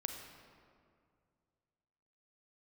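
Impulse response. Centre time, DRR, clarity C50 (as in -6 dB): 48 ms, 4.0 dB, 5.0 dB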